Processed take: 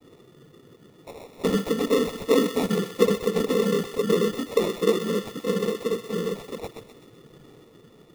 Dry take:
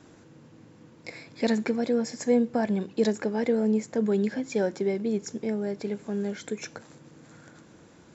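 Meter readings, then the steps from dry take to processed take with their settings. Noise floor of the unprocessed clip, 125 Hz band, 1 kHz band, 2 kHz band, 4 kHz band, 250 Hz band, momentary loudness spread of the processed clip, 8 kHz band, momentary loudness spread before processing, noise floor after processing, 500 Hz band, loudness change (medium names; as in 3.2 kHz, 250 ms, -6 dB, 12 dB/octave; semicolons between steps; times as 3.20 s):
-54 dBFS, +3.5 dB, +4.5 dB, +3.0 dB, +9.5 dB, 0.0 dB, 10 LU, no reading, 12 LU, -54 dBFS, +4.5 dB, +3.0 dB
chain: peaking EQ 600 Hz -10 dB 0.57 oct; noise-vocoded speech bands 16; sample-and-hold 28×; small resonant body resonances 450/3500 Hz, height 12 dB, ringing for 30 ms; on a send: thinning echo 127 ms, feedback 57%, high-pass 1.1 kHz, level -7.5 dB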